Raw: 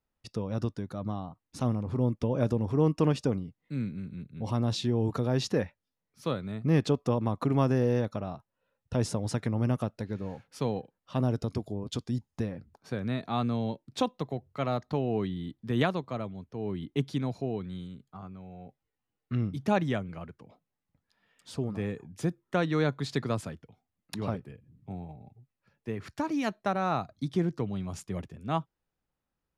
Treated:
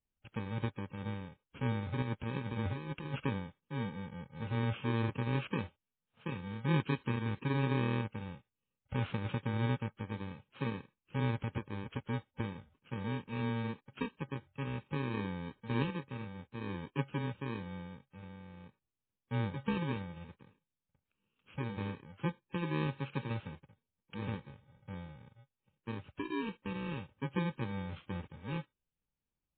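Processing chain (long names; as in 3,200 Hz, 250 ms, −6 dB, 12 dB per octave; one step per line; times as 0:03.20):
samples in bit-reversed order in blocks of 64 samples
0:02.02–0:03.25: compressor whose output falls as the input rises −32 dBFS, ratio −1
0:06.34–0:07.50: parametric band 650 Hz −10.5 dB 0.38 octaves
level −3.5 dB
MP3 16 kbit/s 8,000 Hz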